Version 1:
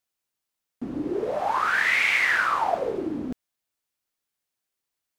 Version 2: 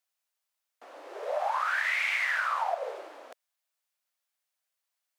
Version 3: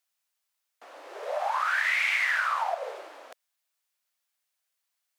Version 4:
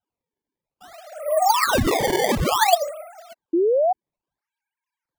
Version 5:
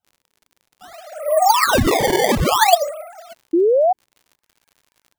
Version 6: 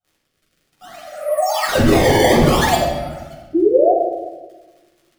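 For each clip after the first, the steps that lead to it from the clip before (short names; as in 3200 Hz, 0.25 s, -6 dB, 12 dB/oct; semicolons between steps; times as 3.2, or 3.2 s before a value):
Chebyshev high-pass 570 Hz, order 4; compressor 5:1, threshold -26 dBFS, peak gain reduction 7.5 dB
tilt shelf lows -3.5 dB, about 660 Hz
sine-wave speech; decimation with a swept rate 19×, swing 160% 0.58 Hz; painted sound rise, 3.53–3.93, 320–770 Hz -26 dBFS; gain +8 dB
crackle 72/s -44 dBFS; gain +4 dB
rotary speaker horn 0.8 Hz, later 8 Hz, at 2.87; reverb RT60 1.2 s, pre-delay 7 ms, DRR -5.5 dB; gain -5 dB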